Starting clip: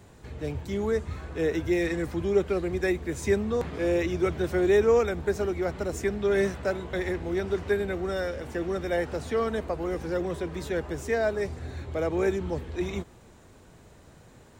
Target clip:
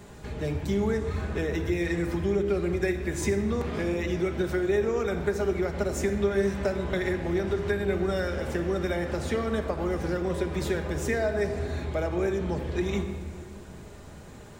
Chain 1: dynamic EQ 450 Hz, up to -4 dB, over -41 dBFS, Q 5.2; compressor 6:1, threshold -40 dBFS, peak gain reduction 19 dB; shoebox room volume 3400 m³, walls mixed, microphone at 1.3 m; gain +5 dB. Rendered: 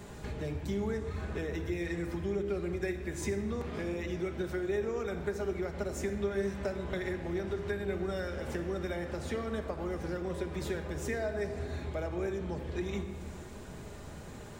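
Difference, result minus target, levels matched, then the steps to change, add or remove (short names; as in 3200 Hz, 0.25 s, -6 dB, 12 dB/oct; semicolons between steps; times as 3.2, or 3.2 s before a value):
compressor: peak gain reduction +7.5 dB
change: compressor 6:1, threshold -31 dBFS, peak gain reduction 11.5 dB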